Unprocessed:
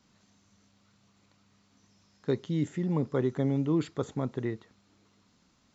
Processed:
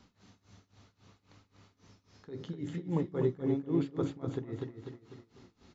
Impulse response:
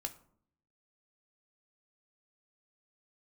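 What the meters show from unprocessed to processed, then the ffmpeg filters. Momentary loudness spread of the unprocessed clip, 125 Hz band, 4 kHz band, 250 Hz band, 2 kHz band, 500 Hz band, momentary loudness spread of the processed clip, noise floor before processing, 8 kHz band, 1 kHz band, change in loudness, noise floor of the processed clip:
8 LU, −5.0 dB, −5.5 dB, −4.0 dB, −7.0 dB, −3.0 dB, 18 LU, −68 dBFS, can't be measured, −5.0 dB, −4.0 dB, −76 dBFS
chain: -filter_complex "[0:a]aresample=16000,aresample=44100,acompressor=threshold=-38dB:ratio=2.5,aecho=1:1:248|496|744|992|1240:0.562|0.236|0.0992|0.0417|0.0175,asplit=2[link_01][link_02];[1:a]atrim=start_sample=2205,lowpass=5800,lowshelf=frequency=390:gain=6[link_03];[link_02][link_03]afir=irnorm=-1:irlink=0,volume=2dB[link_04];[link_01][link_04]amix=inputs=2:normalize=0,tremolo=f=3.7:d=0.91"

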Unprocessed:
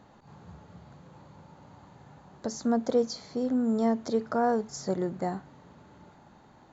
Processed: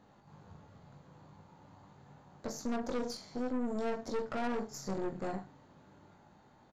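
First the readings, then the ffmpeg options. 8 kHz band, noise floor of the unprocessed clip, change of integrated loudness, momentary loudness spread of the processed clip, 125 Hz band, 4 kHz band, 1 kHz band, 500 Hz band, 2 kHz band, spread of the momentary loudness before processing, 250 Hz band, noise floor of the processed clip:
can't be measured, −56 dBFS, −8.5 dB, 22 LU, −7.5 dB, −5.5 dB, −8.5 dB, −8.5 dB, −2.5 dB, 8 LU, −9.0 dB, −63 dBFS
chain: -af "aecho=1:1:20|42|66.2|92.82|122.1:0.631|0.398|0.251|0.158|0.1,aeval=exprs='(tanh(25.1*val(0)+0.75)-tanh(0.75))/25.1':channel_layout=same,volume=-3.5dB"

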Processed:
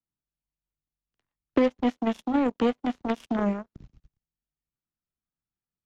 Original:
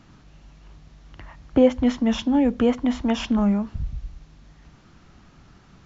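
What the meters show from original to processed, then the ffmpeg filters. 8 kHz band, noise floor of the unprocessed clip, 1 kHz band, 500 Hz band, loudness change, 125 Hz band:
can't be measured, −53 dBFS, 0.0 dB, −5.0 dB, −5.0 dB, −9.5 dB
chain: -filter_complex "[0:a]aeval=exprs='0.562*(cos(1*acos(clip(val(0)/0.562,-1,1)))-cos(1*PI/2))+0.0282*(cos(2*acos(clip(val(0)/0.562,-1,1)))-cos(2*PI/2))+0.0178*(cos(3*acos(clip(val(0)/0.562,-1,1)))-cos(3*PI/2))+0.0224*(cos(5*acos(clip(val(0)/0.562,-1,1)))-cos(5*PI/2))+0.0891*(cos(7*acos(clip(val(0)/0.562,-1,1)))-cos(7*PI/2))':channel_layout=same,acrossover=split=140|700|1500[link_01][link_02][link_03][link_04];[link_01]acompressor=threshold=-47dB:ratio=4[link_05];[link_02]acompressor=threshold=-19dB:ratio=4[link_06];[link_03]acompressor=threshold=-37dB:ratio=4[link_07];[link_04]acompressor=threshold=-37dB:ratio=4[link_08];[link_05][link_06][link_07][link_08]amix=inputs=4:normalize=0"

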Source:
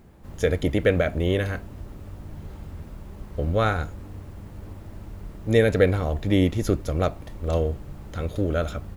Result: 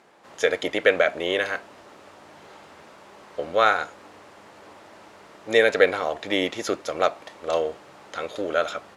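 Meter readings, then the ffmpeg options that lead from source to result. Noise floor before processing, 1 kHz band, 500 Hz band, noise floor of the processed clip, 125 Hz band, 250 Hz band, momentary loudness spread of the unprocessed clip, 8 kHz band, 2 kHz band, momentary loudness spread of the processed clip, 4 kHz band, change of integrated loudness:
−43 dBFS, +6.0 dB, +1.5 dB, −49 dBFS, −22.5 dB, −7.5 dB, 20 LU, +3.5 dB, +7.0 dB, 14 LU, +7.0 dB, +0.5 dB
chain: -af "highpass=630,lowpass=6900,volume=7dB"

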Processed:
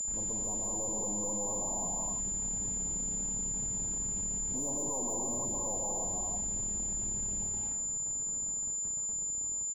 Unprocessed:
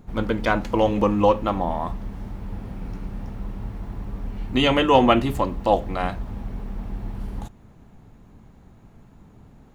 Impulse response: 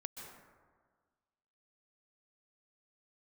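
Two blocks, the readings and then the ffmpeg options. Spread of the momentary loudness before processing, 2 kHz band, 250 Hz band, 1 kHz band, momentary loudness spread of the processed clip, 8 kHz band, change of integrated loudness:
17 LU, below −30 dB, −17.5 dB, −20.0 dB, 1 LU, can't be measured, −8.5 dB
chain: -filter_complex "[1:a]atrim=start_sample=2205,afade=type=out:start_time=0.38:duration=0.01,atrim=end_sample=17199[link_01];[0:a][link_01]afir=irnorm=-1:irlink=0,aeval=exprs='(tanh(44.7*val(0)+0.55)-tanh(0.55))/44.7':channel_layout=same,acrossover=split=130|960|2200[link_02][link_03][link_04][link_05];[link_03]dynaudnorm=framelen=130:gausssize=13:maxgain=4dB[link_06];[link_02][link_06][link_04][link_05]amix=inputs=4:normalize=0,asplit=2[link_07][link_08];[link_08]adelay=452,lowpass=frequency=2000:poles=1,volume=-24dB,asplit=2[link_09][link_10];[link_10]adelay=452,lowpass=frequency=2000:poles=1,volume=0.5,asplit=2[link_11][link_12];[link_12]adelay=452,lowpass=frequency=2000:poles=1,volume=0.5[link_13];[link_07][link_09][link_11][link_13]amix=inputs=4:normalize=0,afftfilt=real='re*(1-between(b*sr/4096,1100,5800))':imag='im*(1-between(b*sr/4096,1100,5800))':win_size=4096:overlap=0.75,acrusher=bits=7:mix=0:aa=0.5,acompressor=threshold=-47dB:ratio=1.5,aeval=exprs='val(0)+0.0282*sin(2*PI*7100*n/s)':channel_layout=same,volume=-1.5dB"

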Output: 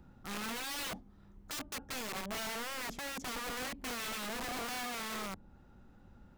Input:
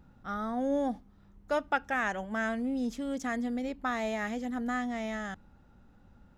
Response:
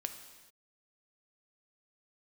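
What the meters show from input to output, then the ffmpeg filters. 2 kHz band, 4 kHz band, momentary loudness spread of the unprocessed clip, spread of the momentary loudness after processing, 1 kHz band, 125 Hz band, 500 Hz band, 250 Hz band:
−5.5 dB, +8.0 dB, 6 LU, 5 LU, −7.5 dB, can't be measured, −11.0 dB, −13.5 dB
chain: -filter_complex "[0:a]equalizer=frequency=360:width_type=o:width=0.22:gain=4.5,acrossover=split=350|910[link_01][link_02][link_03];[link_03]acompressor=threshold=-53dB:ratio=4[link_04];[link_01][link_02][link_04]amix=inputs=3:normalize=0,aeval=exprs='(mod(56.2*val(0)+1,2)-1)/56.2':channel_layout=same"

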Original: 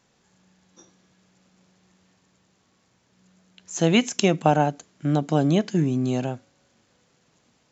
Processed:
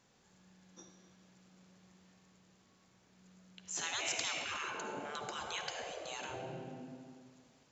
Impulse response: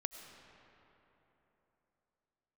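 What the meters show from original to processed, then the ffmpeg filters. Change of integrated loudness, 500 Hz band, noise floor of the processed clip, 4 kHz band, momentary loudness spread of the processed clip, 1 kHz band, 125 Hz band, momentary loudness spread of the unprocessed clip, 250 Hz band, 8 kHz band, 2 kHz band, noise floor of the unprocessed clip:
−17.0 dB, −20.5 dB, −69 dBFS, −8.0 dB, 23 LU, −16.0 dB, −29.5 dB, 11 LU, −28.5 dB, can't be measured, −7.5 dB, −66 dBFS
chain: -filter_complex "[1:a]atrim=start_sample=2205,asetrate=79380,aresample=44100[link_01];[0:a][link_01]afir=irnorm=-1:irlink=0,afftfilt=real='re*lt(hypot(re,im),0.0447)':imag='im*lt(hypot(re,im),0.0447)':win_size=1024:overlap=0.75,volume=3dB"

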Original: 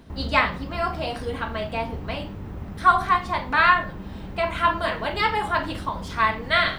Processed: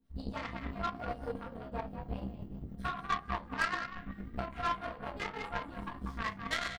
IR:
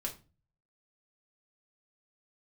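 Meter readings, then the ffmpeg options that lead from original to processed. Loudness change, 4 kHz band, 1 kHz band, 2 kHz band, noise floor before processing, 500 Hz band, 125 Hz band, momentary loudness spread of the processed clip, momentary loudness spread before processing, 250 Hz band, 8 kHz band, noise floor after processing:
−15.5 dB, −15.0 dB, −16.0 dB, −15.0 dB, −36 dBFS, −14.5 dB, −11.0 dB, 9 LU, 14 LU, −9.5 dB, can't be measured, −51 dBFS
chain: -filter_complex "[0:a]aemphasis=mode=production:type=50fm,afwtdn=0.0631,highshelf=frequency=6600:gain=-4.5,acompressor=threshold=-33dB:ratio=2.5,acrossover=split=540[link_01][link_02];[link_01]aeval=exprs='val(0)*(1-0.7/2+0.7/2*cos(2*PI*7.6*n/s))':channel_layout=same[link_03];[link_02]aeval=exprs='val(0)*(1-0.7/2-0.7/2*cos(2*PI*7.6*n/s))':channel_layout=same[link_04];[link_03][link_04]amix=inputs=2:normalize=0,asplit=5[link_05][link_06][link_07][link_08][link_09];[link_06]adelay=191,afreqshift=44,volume=-7dB[link_10];[link_07]adelay=382,afreqshift=88,volume=-16.4dB[link_11];[link_08]adelay=573,afreqshift=132,volume=-25.7dB[link_12];[link_09]adelay=764,afreqshift=176,volume=-35.1dB[link_13];[link_05][link_10][link_11][link_12][link_13]amix=inputs=5:normalize=0,flanger=delay=15.5:depth=4.9:speed=1.8,asplit=2[link_14][link_15];[link_15]adelay=30,volume=-9dB[link_16];[link_14][link_16]amix=inputs=2:normalize=0[link_17];[1:a]atrim=start_sample=2205,atrim=end_sample=3528,asetrate=52920,aresample=44100[link_18];[link_17][link_18]afir=irnorm=-1:irlink=0,aeval=exprs='0.0708*(cos(1*acos(clip(val(0)/0.0708,-1,1)))-cos(1*PI/2))+0.00794*(cos(3*acos(clip(val(0)/0.0708,-1,1)))-cos(3*PI/2))+0.00794*(cos(4*acos(clip(val(0)/0.0708,-1,1)))-cos(4*PI/2))+0.00398*(cos(6*acos(clip(val(0)/0.0708,-1,1)))-cos(6*PI/2))+0.00398*(cos(7*acos(clip(val(0)/0.0708,-1,1)))-cos(7*PI/2))':channel_layout=same,volume=5dB"

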